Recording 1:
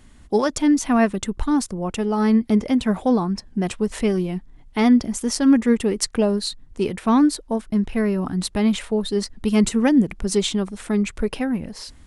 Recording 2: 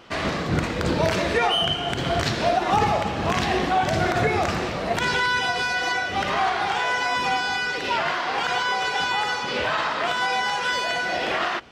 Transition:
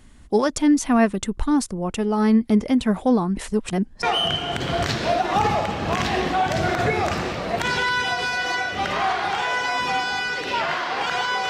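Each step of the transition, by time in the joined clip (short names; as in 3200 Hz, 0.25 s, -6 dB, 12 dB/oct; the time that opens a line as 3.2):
recording 1
3.37–4.03 reverse
4.03 switch to recording 2 from 1.4 s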